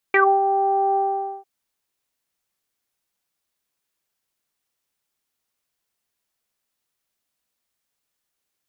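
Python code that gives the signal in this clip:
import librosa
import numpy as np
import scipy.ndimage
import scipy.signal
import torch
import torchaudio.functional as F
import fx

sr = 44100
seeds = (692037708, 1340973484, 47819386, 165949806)

y = fx.sub_voice(sr, note=67, wave='saw', cutoff_hz=850.0, q=9.2, env_oct=1.5, env_s=0.13, attack_ms=2.9, decay_s=0.26, sustain_db=-7.5, release_s=0.48, note_s=0.82, slope=24)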